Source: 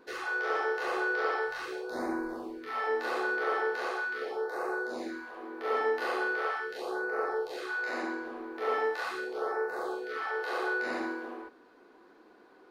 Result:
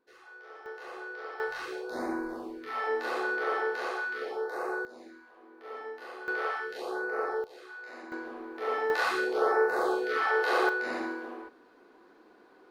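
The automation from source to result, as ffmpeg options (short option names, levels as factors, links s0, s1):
-af "asetnsamples=n=441:p=0,asendcmd='0.66 volume volume -11dB;1.4 volume volume 0dB;4.85 volume volume -12dB;6.28 volume volume 0dB;7.44 volume volume -11dB;8.12 volume volume -1dB;8.9 volume volume 7dB;10.69 volume volume 0dB',volume=0.126"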